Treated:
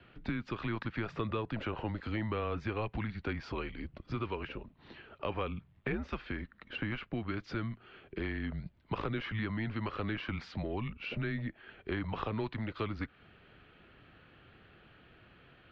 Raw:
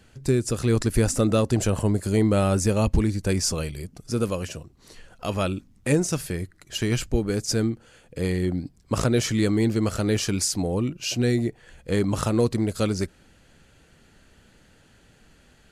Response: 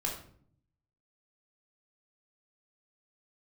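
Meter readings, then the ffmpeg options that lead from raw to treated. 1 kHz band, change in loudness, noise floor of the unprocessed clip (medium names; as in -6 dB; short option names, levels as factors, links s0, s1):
-7.0 dB, -13.5 dB, -57 dBFS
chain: -filter_complex "[0:a]highpass=f=170:t=q:w=0.5412,highpass=f=170:t=q:w=1.307,lowpass=f=3500:t=q:w=0.5176,lowpass=f=3500:t=q:w=0.7071,lowpass=f=3500:t=q:w=1.932,afreqshift=-110,acrossover=split=830|2100[s0][s1][s2];[s0]acompressor=threshold=0.0158:ratio=4[s3];[s1]acompressor=threshold=0.01:ratio=4[s4];[s2]acompressor=threshold=0.00282:ratio=4[s5];[s3][s4][s5]amix=inputs=3:normalize=0"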